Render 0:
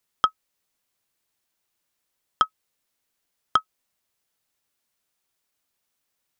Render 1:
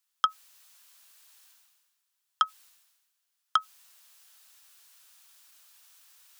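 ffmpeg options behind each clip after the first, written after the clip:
ffmpeg -i in.wav -af "areverse,acompressor=mode=upward:threshold=-39dB:ratio=2.5,areverse,highpass=1200,equalizer=frequency=2100:width_type=o:width=0.37:gain=-5,volume=-1dB" out.wav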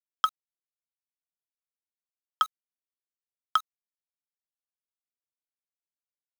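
ffmpeg -i in.wav -af "acrusher=bits=6:mix=0:aa=0.000001" out.wav

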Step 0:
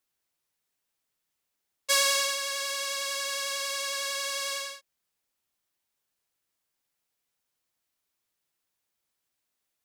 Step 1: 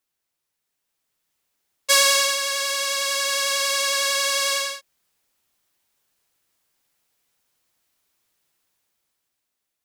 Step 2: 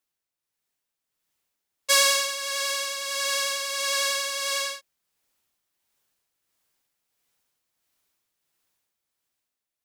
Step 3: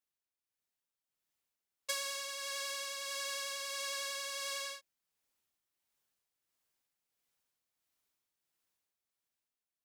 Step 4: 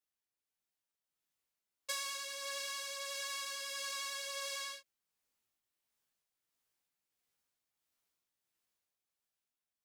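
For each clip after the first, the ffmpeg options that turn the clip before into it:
ffmpeg -i in.wav -af "dynaudnorm=framelen=190:gausssize=11:maxgain=9dB,volume=1dB" out.wav
ffmpeg -i in.wav -af "tremolo=f=1.5:d=0.47,volume=-2.5dB" out.wav
ffmpeg -i in.wav -af "acompressor=threshold=-24dB:ratio=6,volume=-9dB" out.wav
ffmpeg -i in.wav -af "flanger=delay=15:depth=4.1:speed=0.27,volume=1.5dB" out.wav

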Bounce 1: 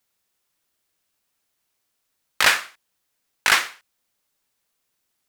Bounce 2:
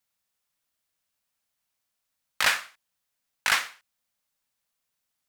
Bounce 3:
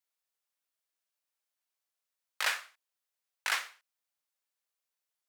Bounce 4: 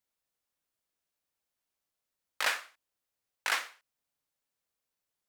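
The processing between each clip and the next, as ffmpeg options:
ffmpeg -i in.wav -af "equalizer=frequency=370:width_type=o:width=0.38:gain=-11.5,volume=-6dB" out.wav
ffmpeg -i in.wav -af "highpass=frequency=340:width=0.5412,highpass=frequency=340:width=1.3066,volume=-8dB" out.wav
ffmpeg -i in.wav -af "lowshelf=frequency=500:gain=11" out.wav

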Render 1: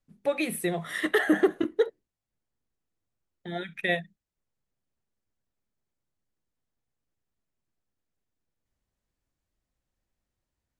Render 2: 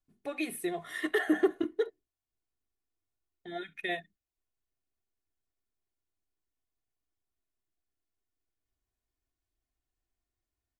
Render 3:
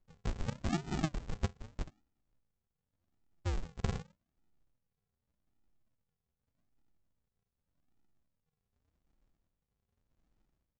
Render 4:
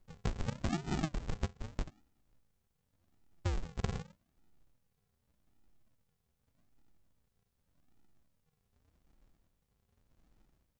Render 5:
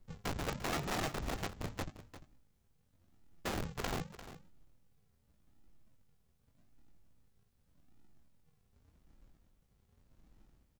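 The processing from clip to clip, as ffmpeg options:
ffmpeg -i in.wav -af "aecho=1:1:2.8:0.62,volume=-7.5dB" out.wav
ffmpeg -i in.wav -af "afftfilt=real='re*pow(10,24/40*sin(2*PI*(0.69*log(max(b,1)*sr/1024/100)/log(2)-(0.86)*(pts-256)/sr)))':imag='im*pow(10,24/40*sin(2*PI*(0.69*log(max(b,1)*sr/1024/100)/log(2)-(0.86)*(pts-256)/sr)))':win_size=1024:overlap=0.75,acompressor=threshold=-35dB:ratio=12,aresample=16000,acrusher=samples=41:mix=1:aa=0.000001:lfo=1:lforange=24.6:lforate=0.84,aresample=44100,volume=4.5dB" out.wav
ffmpeg -i in.wav -af "acompressor=threshold=-39dB:ratio=6,volume=7.5dB" out.wav
ffmpeg -i in.wav -filter_complex "[0:a]acrossover=split=410[link_01][link_02];[link_01]aeval=exprs='(mod(79.4*val(0)+1,2)-1)/79.4':channel_layout=same[link_03];[link_02]flanger=delay=19:depth=2.9:speed=0.55[link_04];[link_03][link_04]amix=inputs=2:normalize=0,aecho=1:1:347:0.211,volume=5dB" out.wav

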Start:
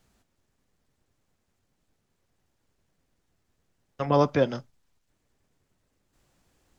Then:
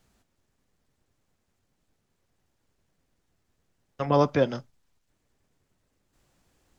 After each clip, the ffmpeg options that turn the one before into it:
ffmpeg -i in.wav -af anull out.wav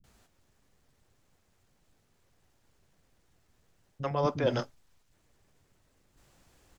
ffmpeg -i in.wav -filter_complex "[0:a]areverse,acompressor=threshold=-28dB:ratio=10,areverse,acrossover=split=250[link_01][link_02];[link_02]adelay=40[link_03];[link_01][link_03]amix=inputs=2:normalize=0,volume=5dB" out.wav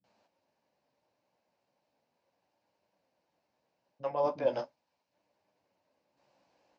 ffmpeg -i in.wav -af "flanger=delay=9.8:depth=6.7:regen=-35:speed=0.37:shape=sinusoidal,highpass=280,equalizer=frequency=400:width_type=q:width=4:gain=-7,equalizer=frequency=580:width_type=q:width=4:gain=7,equalizer=frequency=910:width_type=q:width=4:gain=6,equalizer=frequency=1300:width_type=q:width=4:gain=-9,equalizer=frequency=1900:width_type=q:width=4:gain=-6,equalizer=frequency=3400:width_type=q:width=4:gain=-9,lowpass=frequency=4800:width=0.5412,lowpass=frequency=4800:width=1.3066" out.wav

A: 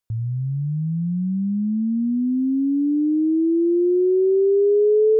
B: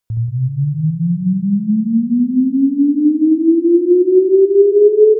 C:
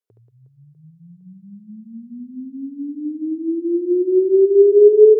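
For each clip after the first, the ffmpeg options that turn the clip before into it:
ffmpeg -i in.wav -af "aecho=1:1:70|182|361.2|647.9|1107:0.631|0.398|0.251|0.158|0.1,volume=4.5dB" out.wav
ffmpeg -i in.wav -af "highpass=frequency=420:width_type=q:width=4.9,volume=-13.5dB" out.wav

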